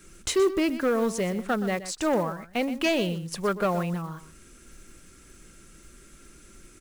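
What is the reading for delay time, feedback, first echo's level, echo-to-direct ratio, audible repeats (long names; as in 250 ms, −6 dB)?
123 ms, repeats not evenly spaced, −13.5 dB, −13.5 dB, 1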